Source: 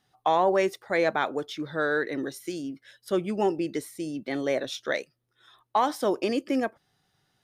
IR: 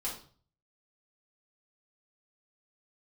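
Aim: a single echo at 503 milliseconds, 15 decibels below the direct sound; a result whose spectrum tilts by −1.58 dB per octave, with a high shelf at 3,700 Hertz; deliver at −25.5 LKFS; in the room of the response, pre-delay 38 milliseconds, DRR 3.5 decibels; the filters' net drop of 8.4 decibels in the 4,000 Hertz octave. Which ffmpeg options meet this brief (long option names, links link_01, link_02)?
-filter_complex "[0:a]highshelf=frequency=3700:gain=-7.5,equalizer=frequency=4000:width_type=o:gain=-6,aecho=1:1:503:0.178,asplit=2[link_01][link_02];[1:a]atrim=start_sample=2205,adelay=38[link_03];[link_02][link_03]afir=irnorm=-1:irlink=0,volume=-6dB[link_04];[link_01][link_04]amix=inputs=2:normalize=0,volume=1dB"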